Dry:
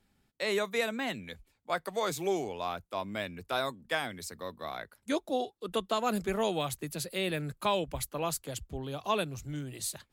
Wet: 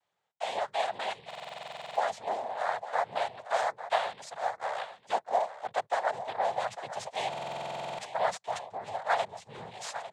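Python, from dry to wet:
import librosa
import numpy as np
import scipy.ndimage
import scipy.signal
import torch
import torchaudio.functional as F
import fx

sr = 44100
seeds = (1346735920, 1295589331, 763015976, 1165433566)

p1 = fx.tracing_dist(x, sr, depth_ms=0.047)
p2 = fx.lowpass(p1, sr, hz=2900.0, slope=6)
p3 = fx.noise_vocoder(p2, sr, seeds[0], bands=6)
p4 = fx.rider(p3, sr, range_db=4, speed_s=0.5)
p5 = fx.low_shelf_res(p4, sr, hz=450.0, db=-13.5, q=3.0)
p6 = p5 + fx.echo_single(p5, sr, ms=851, db=-12.5, dry=0)
y = fx.buffer_glitch(p6, sr, at_s=(1.26, 7.29), block=2048, repeats=14)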